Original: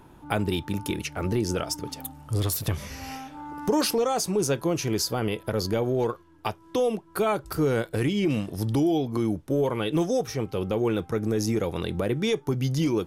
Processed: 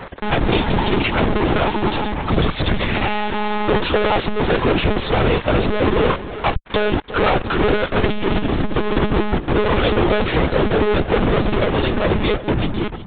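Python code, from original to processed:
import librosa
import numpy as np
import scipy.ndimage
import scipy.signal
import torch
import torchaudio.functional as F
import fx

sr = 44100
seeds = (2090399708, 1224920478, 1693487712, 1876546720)

y = fx.fade_out_tail(x, sr, length_s=2.41)
y = fx.low_shelf(y, sr, hz=71.0, db=-4.0)
y = y * np.sin(2.0 * np.pi * 56.0 * np.arange(len(y)) / sr)
y = fx.fuzz(y, sr, gain_db=54.0, gate_db=-47.0)
y = y + 10.0 ** (-14.0 / 20.0) * np.pad(y, (int(346 * sr / 1000.0), 0))[:len(y)]
y = fx.lpc_monotone(y, sr, seeds[0], pitch_hz=210.0, order=16)
y = fx.transformer_sat(y, sr, knee_hz=76.0)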